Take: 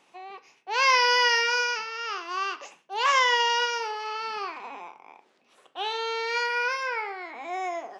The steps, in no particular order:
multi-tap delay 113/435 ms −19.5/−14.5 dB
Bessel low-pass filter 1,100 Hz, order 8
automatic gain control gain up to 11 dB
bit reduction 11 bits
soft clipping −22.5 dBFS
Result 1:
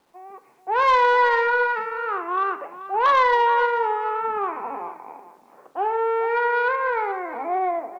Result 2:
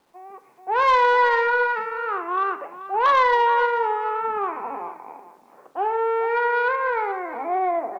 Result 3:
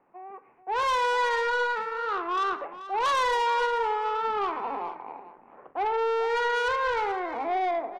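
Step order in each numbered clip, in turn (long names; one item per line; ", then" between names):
Bessel low-pass filter, then soft clipping, then automatic gain control, then multi-tap delay, then bit reduction
Bessel low-pass filter, then soft clipping, then multi-tap delay, then automatic gain control, then bit reduction
bit reduction, then automatic gain control, then Bessel low-pass filter, then soft clipping, then multi-tap delay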